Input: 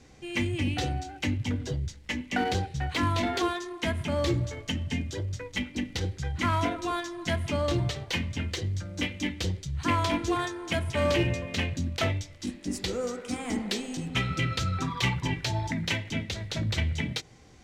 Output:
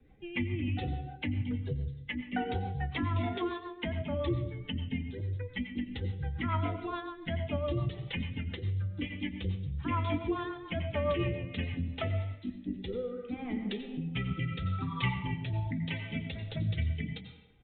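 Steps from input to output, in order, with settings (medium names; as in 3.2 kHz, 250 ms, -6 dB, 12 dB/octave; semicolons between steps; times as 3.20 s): expander on every frequency bin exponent 1.5; dynamic bell 1.6 kHz, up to -6 dB, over -58 dBFS, Q 7.7; resampled via 8 kHz; distance through air 150 m; on a send at -8 dB: reverberation RT60 0.75 s, pre-delay 81 ms; on the sum: rotary cabinet horn 7 Hz, later 0.75 Hz, at 11.42 s; three bands compressed up and down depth 40%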